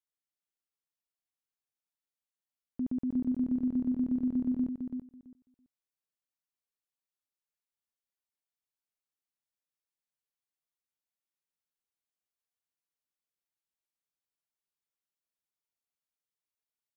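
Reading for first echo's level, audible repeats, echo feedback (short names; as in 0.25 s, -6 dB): -5.0 dB, 2, 16%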